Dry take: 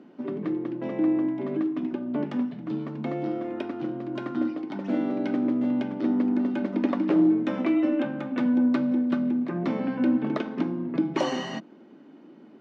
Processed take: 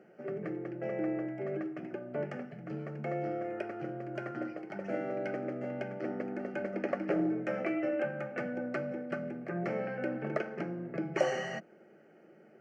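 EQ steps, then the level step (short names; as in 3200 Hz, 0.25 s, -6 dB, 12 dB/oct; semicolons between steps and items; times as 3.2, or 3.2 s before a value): fixed phaser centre 1000 Hz, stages 6; 0.0 dB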